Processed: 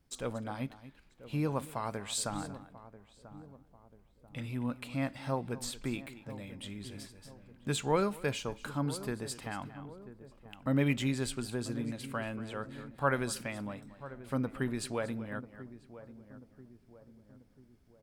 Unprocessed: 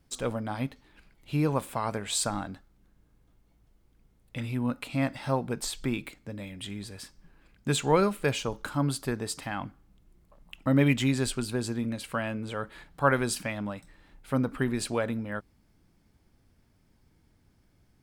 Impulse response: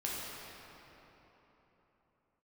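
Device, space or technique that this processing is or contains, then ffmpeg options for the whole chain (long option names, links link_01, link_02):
ducked delay: -filter_complex "[0:a]asplit=3[link_01][link_02][link_03];[link_02]adelay=233,volume=-5.5dB[link_04];[link_03]apad=whole_len=805258[link_05];[link_04][link_05]sidechaincompress=threshold=-36dB:ratio=8:attack=24:release=1390[link_06];[link_01][link_06]amix=inputs=2:normalize=0,asplit=2[link_07][link_08];[link_08]adelay=989,lowpass=frequency=880:poles=1,volume=-14dB,asplit=2[link_09][link_10];[link_10]adelay=989,lowpass=frequency=880:poles=1,volume=0.51,asplit=2[link_11][link_12];[link_12]adelay=989,lowpass=frequency=880:poles=1,volume=0.51,asplit=2[link_13][link_14];[link_14]adelay=989,lowpass=frequency=880:poles=1,volume=0.51,asplit=2[link_15][link_16];[link_16]adelay=989,lowpass=frequency=880:poles=1,volume=0.51[link_17];[link_07][link_09][link_11][link_13][link_15][link_17]amix=inputs=6:normalize=0,volume=-6dB"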